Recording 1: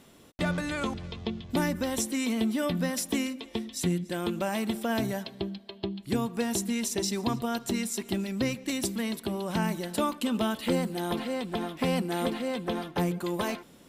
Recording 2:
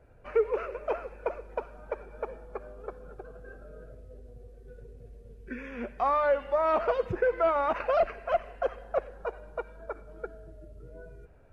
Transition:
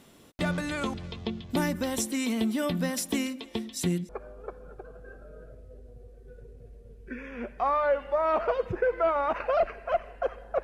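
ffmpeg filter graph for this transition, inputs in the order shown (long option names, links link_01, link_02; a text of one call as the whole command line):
ffmpeg -i cue0.wav -i cue1.wav -filter_complex "[0:a]apad=whole_dur=10.63,atrim=end=10.63,atrim=end=4.092[link_01];[1:a]atrim=start=2.488:end=9.03[link_02];[link_01][link_02]acrossfade=duration=0.004:curve1=hsin:curve2=hsin" out.wav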